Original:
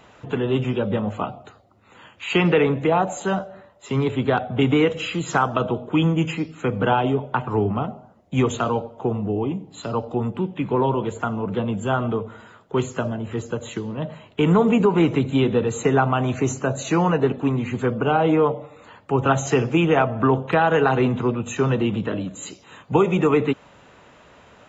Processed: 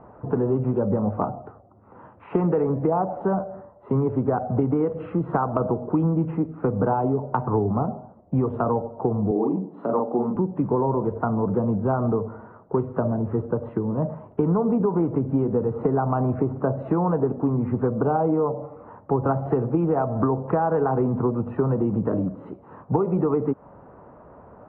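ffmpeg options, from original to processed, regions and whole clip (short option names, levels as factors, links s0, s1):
-filter_complex "[0:a]asettb=1/sr,asplit=3[s0][s1][s2];[s0]atrim=end=9.314[s3];[s1]atrim=start=9.31:end=10.36,asetpts=PTS-STARTPTS,afade=t=in:d=0.004:c=qsin,afade=t=out:st=1.046:d=0.004:c=qsin,highpass=f=190:w=0.5412,highpass=f=190:w=1.3066,asplit=2[s4][s5];[s5]adelay=42,volume=0.708[s6];[s4][s6]amix=inputs=2:normalize=0,atrim=end_sample=46305[s7];[s2]atrim=start=10.356[s8];[s3][s7]acrossfade=d=0.004:c1=hsin:c2=qsin[s9];[s9][s8]acrossfade=d=0.004:c1=qsin:c2=hsin,lowpass=f=1100:w=0.5412,lowpass=f=1100:w=1.3066,acompressor=threshold=0.0708:ratio=6,volume=1.68"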